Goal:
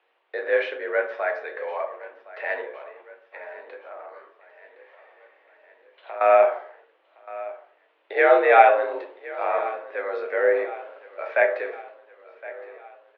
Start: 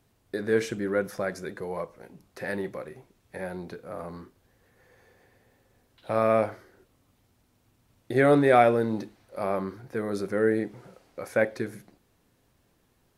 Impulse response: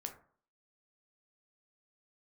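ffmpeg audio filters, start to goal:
-filter_complex "[0:a]asettb=1/sr,asplit=3[link_01][link_02][link_03];[link_01]atrim=end=2.614[link_04];[link_02]atrim=start=2.61:end=6.21,asetpts=PTS-STARTPTS,afade=type=in:duration=0.004:curve=qsin,afade=type=out:start_time=3.596:duration=0.004:curve=qsin,acompressor=threshold=-42dB:ratio=3[link_05];[link_03]atrim=start=6.206[link_06];[link_04][link_05]acrossfade=duration=0.004:curve1=hsin:curve2=qsin[link_07];[link_07][link_06]acrossfade=duration=0.004:curve1=qsin:curve2=hsin,highpass=frequency=380:width_type=q:width=0.5412,highpass=frequency=380:width_type=q:width=1.307,lowpass=frequency=2900:width_type=q:width=0.5176,lowpass=frequency=2900:width_type=q:width=0.7071,lowpass=frequency=2900:width_type=q:width=1.932,afreqshift=62,aemphasis=mode=production:type=riaa,aecho=1:1:1065|2130|3195|4260|5325:0.126|0.0692|0.0381|0.0209|0.0115[link_08];[1:a]atrim=start_sample=2205,afade=type=out:start_time=0.35:duration=0.01,atrim=end_sample=15876,asetrate=34398,aresample=44100[link_09];[link_08][link_09]afir=irnorm=-1:irlink=0,volume=6.5dB"

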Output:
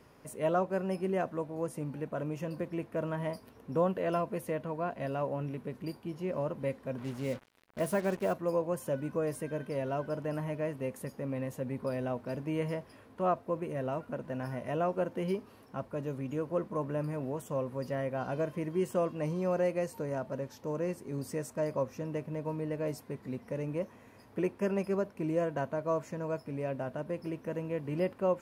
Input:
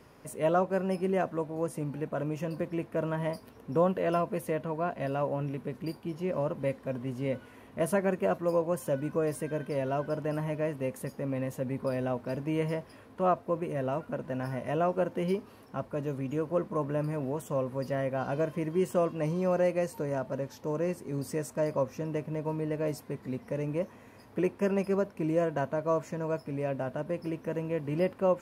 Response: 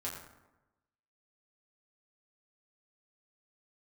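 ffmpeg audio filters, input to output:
-filter_complex "[0:a]asplit=3[link_01][link_02][link_03];[link_01]afade=type=out:start_time=6.97:duration=0.02[link_04];[link_02]acrusher=bits=6:mix=0:aa=0.5,afade=type=in:start_time=6.97:duration=0.02,afade=type=out:start_time=8.32:duration=0.02[link_05];[link_03]afade=type=in:start_time=8.32:duration=0.02[link_06];[link_04][link_05][link_06]amix=inputs=3:normalize=0,volume=-3dB"

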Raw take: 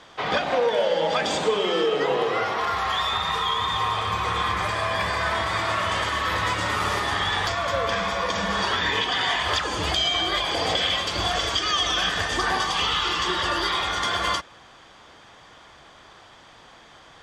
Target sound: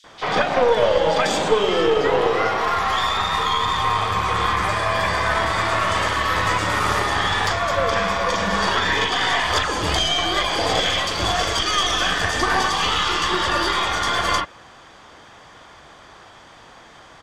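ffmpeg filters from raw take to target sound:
ffmpeg -i in.wav -filter_complex "[0:a]aeval=exprs='0.335*(cos(1*acos(clip(val(0)/0.335,-1,1)))-cos(1*PI/2))+0.075*(cos(2*acos(clip(val(0)/0.335,-1,1)))-cos(2*PI/2))+0.0119*(cos(6*acos(clip(val(0)/0.335,-1,1)))-cos(6*PI/2))+0.00266*(cos(8*acos(clip(val(0)/0.335,-1,1)))-cos(8*PI/2))':channel_layout=same,acrossover=split=3400[link_01][link_02];[link_01]adelay=40[link_03];[link_03][link_02]amix=inputs=2:normalize=0,volume=4.5dB" out.wav

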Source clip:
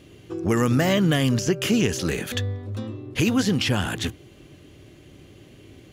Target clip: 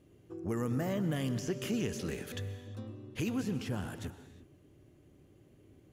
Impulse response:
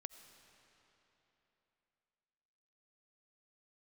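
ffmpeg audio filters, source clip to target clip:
-filter_complex "[0:a]asetnsamples=nb_out_samples=441:pad=0,asendcmd='1.16 equalizer g -3.5;3.36 equalizer g -11',equalizer=frequency=3500:width=0.59:gain=-10.5[link_01];[1:a]atrim=start_sample=2205,afade=type=out:start_time=0.31:duration=0.01,atrim=end_sample=14112,asetrate=31311,aresample=44100[link_02];[link_01][link_02]afir=irnorm=-1:irlink=0,volume=-9dB"

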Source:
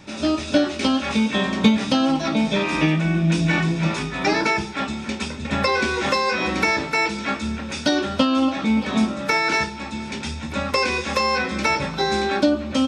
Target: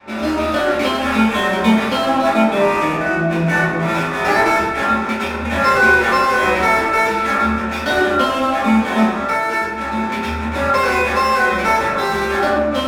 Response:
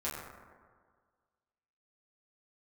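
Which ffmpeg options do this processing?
-filter_complex "[0:a]asettb=1/sr,asplit=3[link_01][link_02][link_03];[link_01]atrim=end=2.424[link_04];[link_02]atrim=start=2.42:end=3.88,asetpts=PTS-STARTPTS,afade=type=in:duration=0.004:curve=qsin,afade=type=out:start_time=1.456:duration=0.004:curve=qsin,highshelf=frequency=2600:gain=-9.5[link_05];[link_03]atrim=start=3.876[link_06];[link_04][link_05]acrossfade=duration=0.004:curve1=hsin:curve2=qsin[link_07];[link_07][link_06]acrossfade=duration=0.004:curve1=qsin:curve2=hsin,asettb=1/sr,asplit=3[link_08][link_09][link_10];[link_08]atrim=end=9.204[link_11];[link_09]atrim=start=9.2:end=9.78,asetpts=PTS-STARTPTS,afade=type=in:duration=0.004:curve=qsin,afade=type=out:start_time=0.576:duration=0.004:curve=qsin,acompressor=threshold=-26dB:ratio=6[link_12];[link_10]atrim=start=9.776[link_13];[link_11][link_12]acrossfade=duration=0.004:curve1=hsin:curve2=qsin[link_14];[link_14][link_13]acrossfade=duration=0.004:curve1=qsin:curve2=hsin,adynamicequalizer=threshold=0.0224:dfrequency=240:dqfactor=0.74:tfrequency=240:tqfactor=0.74:attack=5:release=100:ratio=0.375:range=2:mode=cutabove:tftype=bell,asplit=2[link_15][link_16];[link_16]highpass=frequency=720:poles=1,volume=22dB,asoftclip=type=tanh:threshold=-2.5dB[link_17];[link_15][link_17]amix=inputs=2:normalize=0,lowpass=frequency=1500:poles=1,volume=-6dB,adynamicsmooth=sensitivity=4:basefreq=1700[link_18];[1:a]atrim=start_sample=2205,afade=type=out:start_time=0.31:duration=0.01,atrim=end_sample=14112[link_19];[link_18][link_19]afir=irnorm=-1:irlink=0,volume=-4dB"

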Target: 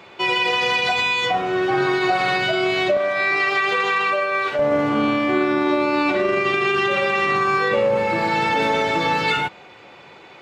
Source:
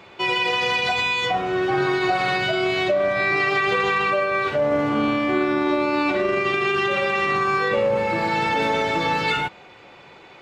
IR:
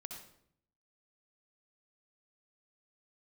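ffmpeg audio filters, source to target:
-af "asetnsamples=nb_out_samples=441:pad=0,asendcmd='2.97 highpass f 540;4.59 highpass f 86',highpass=frequency=130:poles=1,volume=2dB"

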